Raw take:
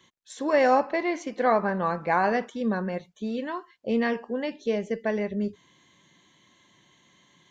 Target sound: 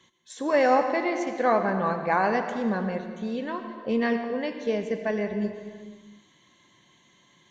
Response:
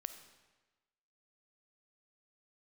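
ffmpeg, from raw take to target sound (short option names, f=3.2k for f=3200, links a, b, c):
-filter_complex "[1:a]atrim=start_sample=2205,afade=t=out:st=0.45:d=0.01,atrim=end_sample=20286,asetrate=23814,aresample=44100[a];[0:a][a]afir=irnorm=-1:irlink=0"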